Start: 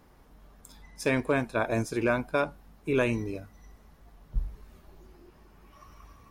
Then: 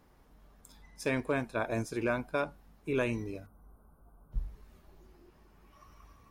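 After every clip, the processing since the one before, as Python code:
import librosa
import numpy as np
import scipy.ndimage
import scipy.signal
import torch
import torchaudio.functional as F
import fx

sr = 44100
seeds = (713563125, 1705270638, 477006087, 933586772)

y = fx.spec_box(x, sr, start_s=3.46, length_s=0.87, low_hz=1600.0, high_hz=8500.0, gain_db=-26)
y = y * librosa.db_to_amplitude(-5.0)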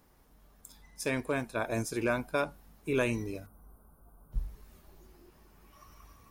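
y = fx.high_shelf(x, sr, hz=6100.0, db=10.5)
y = fx.rider(y, sr, range_db=10, speed_s=2.0)
y = y * librosa.db_to_amplitude(1.5)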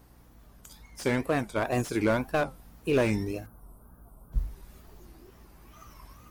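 y = fx.wow_flutter(x, sr, seeds[0], rate_hz=2.1, depth_cents=150.0)
y = fx.add_hum(y, sr, base_hz=60, snr_db=27)
y = fx.slew_limit(y, sr, full_power_hz=44.0)
y = y * librosa.db_to_amplitude(5.0)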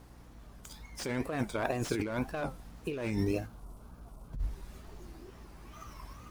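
y = scipy.signal.medfilt(x, 3)
y = fx.over_compress(y, sr, threshold_db=-31.0, ratio=-1.0)
y = y * librosa.db_to_amplitude(-1.5)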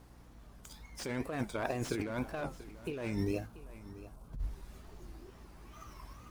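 y = x + 10.0 ** (-16.5 / 20.0) * np.pad(x, (int(686 * sr / 1000.0), 0))[:len(x)]
y = y * librosa.db_to_amplitude(-3.0)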